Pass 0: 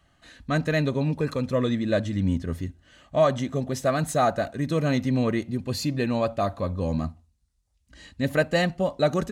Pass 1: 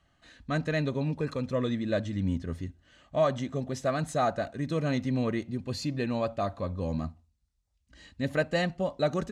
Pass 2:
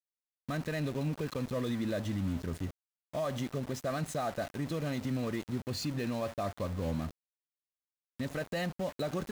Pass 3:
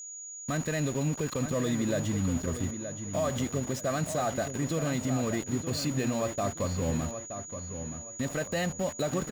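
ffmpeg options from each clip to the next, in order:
-af "lowpass=8.3k,deesser=0.6,volume=-5dB"
-af "alimiter=level_in=1.5dB:limit=-24dB:level=0:latency=1:release=78,volume=-1.5dB,aeval=exprs='val(0)*gte(abs(val(0)),0.00841)':c=same"
-filter_complex "[0:a]aeval=exprs='val(0)+0.00631*sin(2*PI*6800*n/s)':c=same,asplit=2[a][b];[b]adelay=923,lowpass=f=3.4k:p=1,volume=-9dB,asplit=2[c][d];[d]adelay=923,lowpass=f=3.4k:p=1,volume=0.32,asplit=2[e][f];[f]adelay=923,lowpass=f=3.4k:p=1,volume=0.32,asplit=2[g][h];[h]adelay=923,lowpass=f=3.4k:p=1,volume=0.32[i];[a][c][e][g][i]amix=inputs=5:normalize=0,volume=4dB"

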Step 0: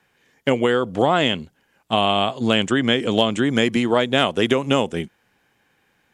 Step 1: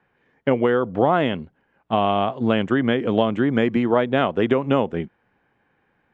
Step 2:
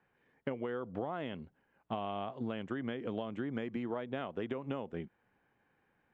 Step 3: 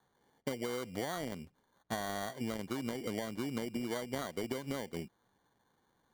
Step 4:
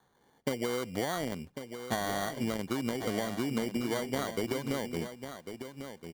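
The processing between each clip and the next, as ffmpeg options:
-af "lowpass=1.7k"
-af "acompressor=threshold=-26dB:ratio=6,volume=-8.5dB"
-af "acrusher=samples=17:mix=1:aa=0.000001"
-af "aecho=1:1:1098:0.335,volume=5dB"

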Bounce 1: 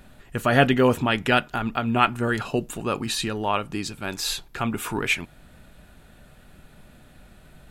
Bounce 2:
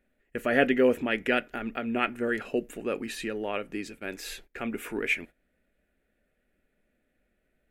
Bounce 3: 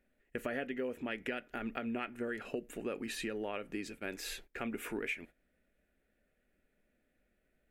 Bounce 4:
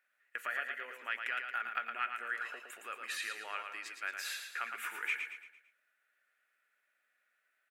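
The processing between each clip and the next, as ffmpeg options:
-af "agate=range=-16dB:threshold=-38dB:ratio=16:detection=peak,equalizer=f=125:t=o:w=1:g=-12,equalizer=f=250:t=o:w=1:g=5,equalizer=f=500:t=o:w=1:g=9,equalizer=f=1k:t=o:w=1:g=-11,equalizer=f=2k:t=o:w=1:g=11,equalizer=f=4k:t=o:w=1:g=-7,equalizer=f=8k:t=o:w=1:g=-3,volume=-8.5dB"
-af "acompressor=threshold=-31dB:ratio=12,volume=-3dB"
-filter_complex "[0:a]highpass=f=1.3k:t=q:w=2.4,asplit=2[a][b];[b]aecho=0:1:113|226|339|452|565:0.501|0.216|0.0927|0.0398|0.0171[c];[a][c]amix=inputs=2:normalize=0"

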